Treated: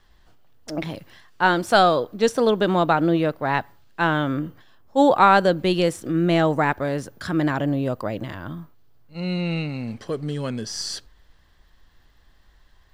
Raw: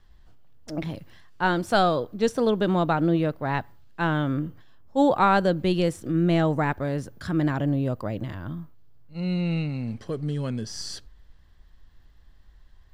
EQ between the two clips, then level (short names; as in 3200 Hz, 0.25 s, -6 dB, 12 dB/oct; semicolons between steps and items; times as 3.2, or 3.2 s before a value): low shelf 220 Hz -10 dB; +6.0 dB